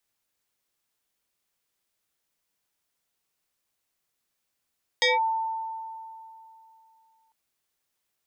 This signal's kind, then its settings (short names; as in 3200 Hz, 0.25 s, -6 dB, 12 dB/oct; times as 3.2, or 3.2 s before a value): FM tone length 2.30 s, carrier 894 Hz, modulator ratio 1.56, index 3.3, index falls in 0.17 s linear, decay 2.87 s, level -17.5 dB